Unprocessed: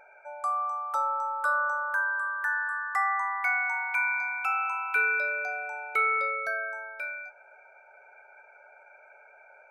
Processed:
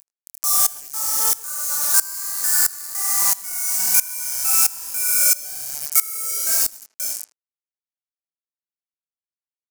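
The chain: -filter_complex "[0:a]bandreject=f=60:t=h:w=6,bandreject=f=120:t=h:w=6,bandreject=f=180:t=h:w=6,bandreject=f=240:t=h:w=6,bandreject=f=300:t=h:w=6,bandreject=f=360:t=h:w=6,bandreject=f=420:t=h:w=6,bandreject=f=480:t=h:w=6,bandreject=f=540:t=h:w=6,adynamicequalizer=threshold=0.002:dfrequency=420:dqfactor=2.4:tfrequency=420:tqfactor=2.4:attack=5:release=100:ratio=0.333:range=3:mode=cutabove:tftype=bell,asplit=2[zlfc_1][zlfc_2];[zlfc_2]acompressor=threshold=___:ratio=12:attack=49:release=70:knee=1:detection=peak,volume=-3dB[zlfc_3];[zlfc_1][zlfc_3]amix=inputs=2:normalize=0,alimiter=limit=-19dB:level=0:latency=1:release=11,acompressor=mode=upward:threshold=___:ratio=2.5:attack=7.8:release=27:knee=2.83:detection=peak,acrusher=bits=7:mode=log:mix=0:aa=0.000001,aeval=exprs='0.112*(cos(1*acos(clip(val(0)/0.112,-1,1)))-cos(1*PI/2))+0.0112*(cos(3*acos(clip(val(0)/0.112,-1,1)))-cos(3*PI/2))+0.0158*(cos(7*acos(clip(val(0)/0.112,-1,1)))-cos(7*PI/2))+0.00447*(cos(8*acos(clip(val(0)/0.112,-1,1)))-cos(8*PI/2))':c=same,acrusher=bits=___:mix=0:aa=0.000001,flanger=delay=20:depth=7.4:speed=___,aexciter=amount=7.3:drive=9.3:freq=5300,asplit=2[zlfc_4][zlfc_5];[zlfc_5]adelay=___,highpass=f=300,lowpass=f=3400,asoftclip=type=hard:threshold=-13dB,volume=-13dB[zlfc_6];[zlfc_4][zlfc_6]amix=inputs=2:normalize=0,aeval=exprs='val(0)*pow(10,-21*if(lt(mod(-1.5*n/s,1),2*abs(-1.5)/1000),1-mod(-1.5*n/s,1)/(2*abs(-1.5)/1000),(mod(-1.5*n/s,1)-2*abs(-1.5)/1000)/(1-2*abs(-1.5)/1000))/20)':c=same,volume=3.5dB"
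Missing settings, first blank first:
-40dB, -34dB, 4, 1.2, 80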